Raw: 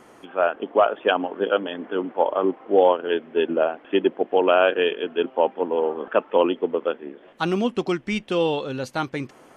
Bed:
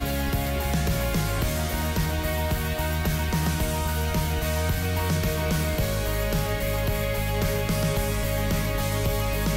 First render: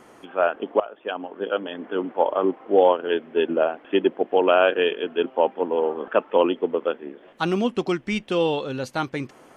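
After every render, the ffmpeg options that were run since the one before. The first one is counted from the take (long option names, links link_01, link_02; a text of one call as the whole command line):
ffmpeg -i in.wav -filter_complex "[0:a]asplit=2[link_01][link_02];[link_01]atrim=end=0.8,asetpts=PTS-STARTPTS,afade=type=out:start_time=0.796:duration=0.004:curve=hsin:silence=0.125893[link_03];[link_02]atrim=start=0.8,asetpts=PTS-STARTPTS,afade=type=in:duration=1.23:silence=0.125893[link_04];[link_03][link_04]concat=n=2:v=0:a=1" out.wav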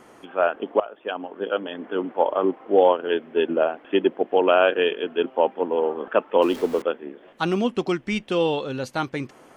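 ffmpeg -i in.wav -filter_complex "[0:a]asettb=1/sr,asplit=3[link_01][link_02][link_03];[link_01]atrim=end=6.424[link_04];[link_02]atrim=start=6.42:end=6.82,asetpts=PTS-STARTPTS,afade=type=in:duration=0.004:curve=qsin,afade=type=out:start_time=0.396:duration=0.004:curve=qsin,aeval=exprs='val(0)+0.5*0.0251*sgn(val(0))':channel_layout=same[link_05];[link_03]atrim=start=6.816[link_06];[link_04][link_05]acrossfade=duration=0.004:curve1=hsin:curve2=qsin[link_07];[link_07][link_06]acrossfade=duration=0.004:curve1=qsin:curve2=hsin" out.wav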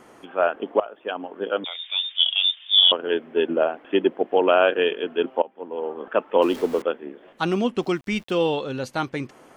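ffmpeg -i in.wav -filter_complex "[0:a]asettb=1/sr,asplit=3[link_01][link_02][link_03];[link_01]atrim=end=1.644[link_04];[link_02]atrim=start=1.64:end=2.92,asetpts=PTS-STARTPTS,afade=type=in:duration=0.004:curve=qsin,afade=type=out:start_time=1.276:duration=0.004:curve=qsin,lowpass=frequency=3300:width_type=q:width=0.5098,lowpass=frequency=3300:width_type=q:width=0.6013,lowpass=frequency=3300:width_type=q:width=0.9,lowpass=frequency=3300:width_type=q:width=2.563,afreqshift=-3900[link_05];[link_03]atrim=start=2.916[link_06];[link_04][link_05]acrossfade=duration=0.004:curve1=hsin:curve2=qsin[link_07];[link_07][link_06]acrossfade=duration=0.004:curve1=qsin:curve2=hsin,asettb=1/sr,asplit=3[link_08][link_09][link_10];[link_08]atrim=end=7.824[link_11];[link_09]atrim=start=7.82:end=8.48,asetpts=PTS-STARTPTS,afade=type=in:duration=0.004:curve=qsin,afade=type=out:start_time=0.656:duration=0.004:curve=qsin,aeval=exprs='val(0)*gte(abs(val(0)),0.00398)':channel_layout=same[link_12];[link_10]atrim=start=8.476[link_13];[link_11][link_12]acrossfade=duration=0.004:curve1=hsin:curve2=qsin[link_14];[link_14][link_13]acrossfade=duration=0.004:curve1=qsin:curve2=hsin,asplit=2[link_15][link_16];[link_15]atrim=end=5.42,asetpts=PTS-STARTPTS,afade=type=out:start_time=5.416:duration=0.004:curve=hsin:silence=0.0794328[link_17];[link_16]atrim=start=5.42,asetpts=PTS-STARTPTS,afade=type=in:duration=0.91:silence=0.0794328[link_18];[link_17][link_18]concat=n=2:v=0:a=1" out.wav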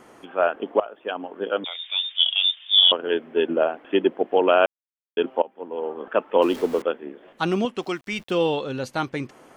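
ffmpeg -i in.wav -filter_complex "[0:a]asettb=1/sr,asplit=3[link_01][link_02][link_03];[link_01]atrim=end=7.654[link_04];[link_02]atrim=start=7.65:end=8.19,asetpts=PTS-STARTPTS,afade=type=in:duration=0.004:curve=qsin,afade=type=out:start_time=0.536:duration=0.004:curve=qsin,lowshelf=frequency=340:gain=-10[link_05];[link_03]atrim=start=8.186[link_06];[link_04][link_05]acrossfade=duration=0.004:curve1=hsin:curve2=qsin[link_07];[link_07][link_06]acrossfade=duration=0.004:curve1=qsin:curve2=hsin,asplit=3[link_08][link_09][link_10];[link_08]atrim=end=4.66,asetpts=PTS-STARTPTS,afade=type=out:start_time=4.656:duration=0.004:curve=hsin[link_11];[link_09]atrim=start=4.66:end=5.17,asetpts=PTS-STARTPTS,volume=0[link_12];[link_10]atrim=start=5.17,asetpts=PTS-STARTPTS,afade=type=in:duration=0.004:curve=hsin[link_13];[link_11][link_12][link_13]concat=n=3:v=0:a=1" out.wav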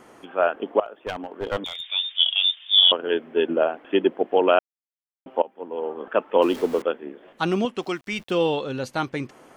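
ffmpeg -i in.wav -filter_complex "[0:a]asettb=1/sr,asplit=3[link_01][link_02][link_03];[link_01]atrim=end=0.854[link_04];[link_02]atrim=start=0.85:end=1.92,asetpts=PTS-STARTPTS,afade=type=in:duration=0.004:curve=qsin,afade=type=out:start_time=1.066:duration=0.004:curve=qsin,aeval=exprs='clip(val(0),-1,0.0422)':channel_layout=same[link_05];[link_03]atrim=start=1.916[link_06];[link_04][link_05]acrossfade=duration=0.004:curve1=hsin:curve2=qsin[link_07];[link_07][link_06]acrossfade=duration=0.004:curve1=qsin:curve2=hsin,asplit=3[link_08][link_09][link_10];[link_08]atrim=end=4.59,asetpts=PTS-STARTPTS,afade=type=out:start_time=4.586:duration=0.004:curve=hsin[link_11];[link_09]atrim=start=4.59:end=5.26,asetpts=PTS-STARTPTS,volume=0[link_12];[link_10]atrim=start=5.26,asetpts=PTS-STARTPTS,afade=type=in:duration=0.004:curve=hsin[link_13];[link_11][link_12][link_13]concat=n=3:v=0:a=1" out.wav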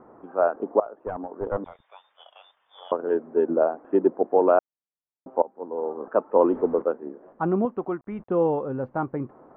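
ffmpeg -i in.wav -af "lowpass=frequency=1200:width=0.5412,lowpass=frequency=1200:width=1.3066" out.wav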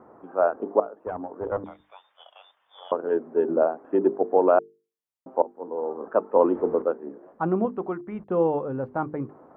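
ffmpeg -i in.wav -af "highpass=43,bandreject=frequency=50:width_type=h:width=6,bandreject=frequency=100:width_type=h:width=6,bandreject=frequency=150:width_type=h:width=6,bandreject=frequency=200:width_type=h:width=6,bandreject=frequency=250:width_type=h:width=6,bandreject=frequency=300:width_type=h:width=6,bandreject=frequency=350:width_type=h:width=6,bandreject=frequency=400:width_type=h:width=6,bandreject=frequency=450:width_type=h:width=6" out.wav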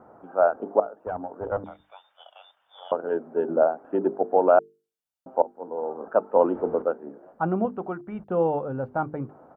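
ffmpeg -i in.wav -af "bandreject=frequency=2100:width=10,aecho=1:1:1.4:0.33" out.wav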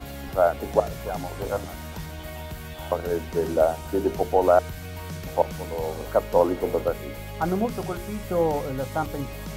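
ffmpeg -i in.wav -i bed.wav -filter_complex "[1:a]volume=-10.5dB[link_01];[0:a][link_01]amix=inputs=2:normalize=0" out.wav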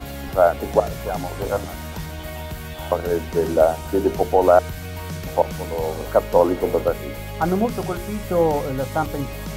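ffmpeg -i in.wav -af "volume=4.5dB,alimiter=limit=-3dB:level=0:latency=1" out.wav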